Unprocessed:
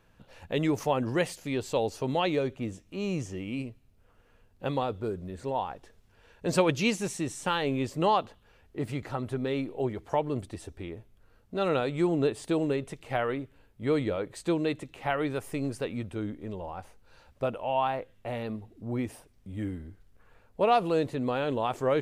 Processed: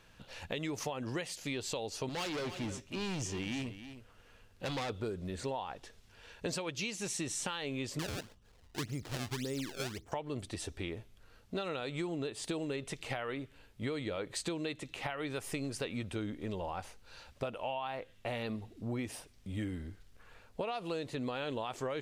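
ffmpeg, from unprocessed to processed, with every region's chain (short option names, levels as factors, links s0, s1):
-filter_complex "[0:a]asettb=1/sr,asplit=3[s0][s1][s2];[s0]atrim=end=2.094[s3];[s1]atrim=start=2.09:end=4.9,asetpts=PTS-STARTPTS,afade=t=in:d=0.004:c=qsin,afade=t=out:st=2.806:d=0.004:c=qsin,volume=47.3,asoftclip=hard,volume=0.0211,aecho=1:1:310:0.211,atrim=end_sample=123921[s4];[s2]atrim=start=4.896[s5];[s3][s4]acrossfade=d=0.004:c1=hsin:c2=qsin[s6];[s6][s5]acrossfade=d=0.004:c1=qsin:c2=hsin,asettb=1/sr,asplit=3[s7][s8][s9];[s7]atrim=end=7.994[s10];[s8]atrim=start=7.99:end=10.12,asetpts=PTS-STARTPTS,afade=t=in:d=0.004:c=qsin,afade=t=out:st=2.126:d=0.004:c=qsin,lowpass=1800,equalizer=f=1100:w=0.43:g=-9.5,acrusher=samples=26:mix=1:aa=0.000001:lfo=1:lforange=41.6:lforate=1.8[s11];[s9]atrim=start=10.116[s12];[s10][s11]acrossfade=d=0.004:c1=hsin:c2=qsin[s13];[s13][s12]acrossfade=d=0.004:c1=qsin:c2=hsin,equalizer=f=4600:w=0.42:g=9.5,alimiter=limit=0.106:level=0:latency=1:release=488,acompressor=threshold=0.02:ratio=6"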